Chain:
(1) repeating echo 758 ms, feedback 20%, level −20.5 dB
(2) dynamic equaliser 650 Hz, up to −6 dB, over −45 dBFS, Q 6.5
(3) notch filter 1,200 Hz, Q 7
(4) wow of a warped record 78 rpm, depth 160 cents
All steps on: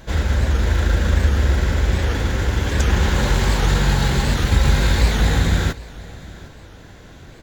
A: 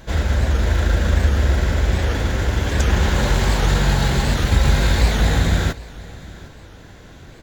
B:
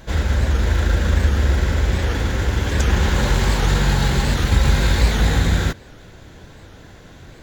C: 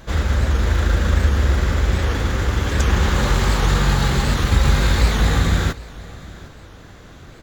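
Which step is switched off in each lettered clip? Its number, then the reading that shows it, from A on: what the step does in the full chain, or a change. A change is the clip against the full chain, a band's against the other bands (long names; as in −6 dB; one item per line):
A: 2, change in momentary loudness spread −3 LU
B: 1, change in momentary loudness spread −3 LU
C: 3, 1 kHz band +1.5 dB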